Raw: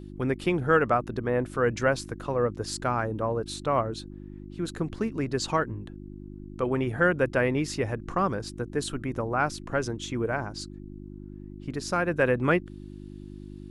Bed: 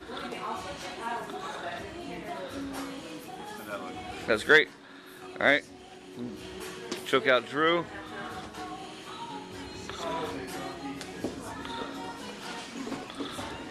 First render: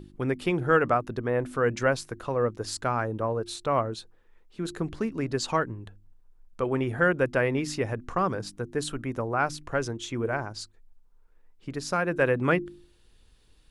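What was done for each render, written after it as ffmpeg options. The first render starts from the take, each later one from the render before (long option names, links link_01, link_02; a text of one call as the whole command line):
ffmpeg -i in.wav -af "bandreject=frequency=50:width_type=h:width=4,bandreject=frequency=100:width_type=h:width=4,bandreject=frequency=150:width_type=h:width=4,bandreject=frequency=200:width_type=h:width=4,bandreject=frequency=250:width_type=h:width=4,bandreject=frequency=300:width_type=h:width=4,bandreject=frequency=350:width_type=h:width=4" out.wav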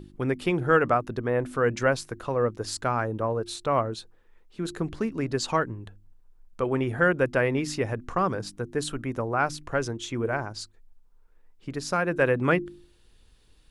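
ffmpeg -i in.wav -af "volume=1dB" out.wav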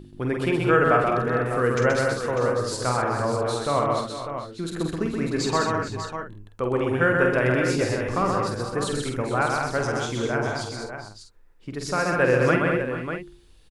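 ffmpeg -i in.wav -filter_complex "[0:a]asplit=2[link_01][link_02];[link_02]adelay=48,volume=-6dB[link_03];[link_01][link_03]amix=inputs=2:normalize=0,aecho=1:1:128|204|431|455|597:0.668|0.531|0.178|0.2|0.355" out.wav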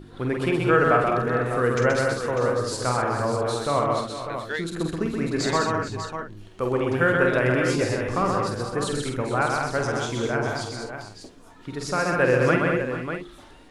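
ffmpeg -i in.wav -i bed.wav -filter_complex "[1:a]volume=-11.5dB[link_01];[0:a][link_01]amix=inputs=2:normalize=0" out.wav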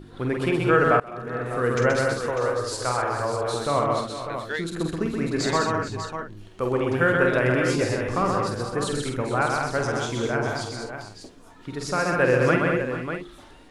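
ffmpeg -i in.wav -filter_complex "[0:a]asettb=1/sr,asplit=3[link_01][link_02][link_03];[link_01]atrim=end=2.304[link_04];[link_02]atrim=start=2.3:end=3.54,asetpts=PTS-STARTPTS,afade=type=in:duration=0.004:curve=qsin,afade=type=out:start_time=1.236:duration=0.004:curve=qsin,equalizer=frequency=190:width_type=o:width=0.98:gain=-12.5[link_05];[link_03]atrim=start=3.536[link_06];[link_04][link_05]acrossfade=duration=0.004:curve1=hsin:curve2=qsin[link_07];[link_07][link_06]acrossfade=duration=0.004:curve1=qsin:curve2=hsin,asplit=2[link_08][link_09];[link_08]atrim=end=1,asetpts=PTS-STARTPTS,afade=type=out:start_time=0.996:duration=0.004:curve=hsin:silence=0.0668344[link_10];[link_09]atrim=start=1,asetpts=PTS-STARTPTS,afade=type=in:duration=0.78:silence=0.0668344[link_11];[link_10][link_11]concat=n=2:v=0:a=1" out.wav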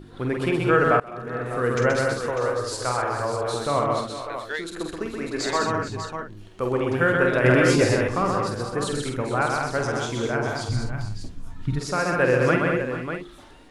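ffmpeg -i in.wav -filter_complex "[0:a]asettb=1/sr,asplit=3[link_01][link_02][link_03];[link_01]atrim=end=4.214[link_04];[link_02]atrim=start=4.21:end=5.61,asetpts=PTS-STARTPTS,afade=type=in:duration=0.004:curve=qsin,afade=type=out:start_time=1.396:duration=0.004:curve=qsin,equalizer=frequency=160:width_type=o:width=1.1:gain=-13[link_05];[link_03]atrim=start=5.606[link_06];[link_04][link_05]acrossfade=duration=0.004:curve1=hsin:curve2=qsin[link_07];[link_07][link_06]acrossfade=duration=0.004:curve1=qsin:curve2=hsin,asettb=1/sr,asplit=3[link_08][link_09][link_10];[link_08]atrim=end=7.444[link_11];[link_09]atrim=start=7.44:end=8.08,asetpts=PTS-STARTPTS,afade=type=in:duration=0.004:curve=qsin,afade=type=out:start_time=0.636:duration=0.004:curve=qsin,acontrast=23[link_12];[link_10]atrim=start=8.076[link_13];[link_11][link_12]acrossfade=duration=0.004:curve1=hsin:curve2=qsin[link_14];[link_14][link_13]acrossfade=duration=0.004:curve1=qsin:curve2=hsin,asplit=3[link_15][link_16][link_17];[link_15]afade=type=out:start_time=10.68:duration=0.02[link_18];[link_16]asubboost=boost=12:cutoff=130,afade=type=in:start_time=10.68:duration=0.02,afade=type=out:start_time=11.78:duration=0.02[link_19];[link_17]afade=type=in:start_time=11.78:duration=0.02[link_20];[link_18][link_19][link_20]amix=inputs=3:normalize=0" out.wav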